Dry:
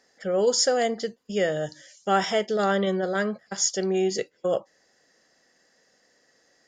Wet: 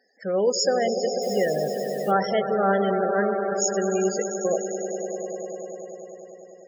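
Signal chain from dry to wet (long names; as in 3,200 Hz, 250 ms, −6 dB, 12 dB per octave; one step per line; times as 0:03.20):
echo that builds up and dies away 99 ms, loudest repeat 5, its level −11 dB
spectral peaks only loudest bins 32
0:01.21–0:02.10: background noise blue −48 dBFS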